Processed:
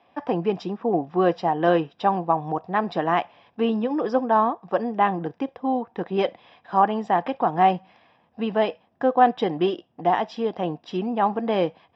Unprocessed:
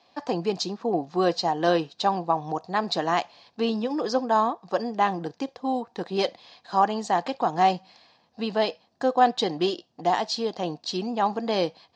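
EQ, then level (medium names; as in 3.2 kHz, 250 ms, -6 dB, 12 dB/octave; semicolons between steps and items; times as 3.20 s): Savitzky-Golay filter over 25 samples; distance through air 64 m; bass shelf 160 Hz +3 dB; +2.5 dB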